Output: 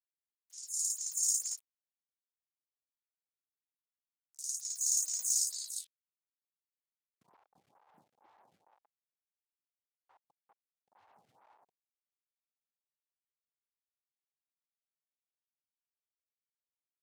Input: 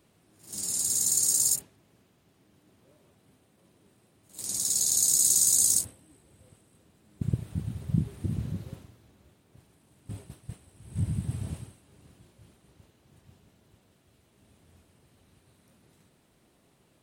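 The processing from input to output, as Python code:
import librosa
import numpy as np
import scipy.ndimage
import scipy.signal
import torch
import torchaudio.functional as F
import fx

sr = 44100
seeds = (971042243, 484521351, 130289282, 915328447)

y = fx.delta_hold(x, sr, step_db=-37.0)
y = fx.riaa(y, sr, side='recording')
y = fx.filter_sweep_bandpass(y, sr, from_hz=6000.0, to_hz=840.0, start_s=5.28, end_s=7.4, q=4.4)
y = 10.0 ** (-12.5 / 20.0) * np.tanh(y / 10.0 ** (-12.5 / 20.0))
y = fx.stagger_phaser(y, sr, hz=2.2)
y = F.gain(torch.from_numpy(y), -7.0).numpy()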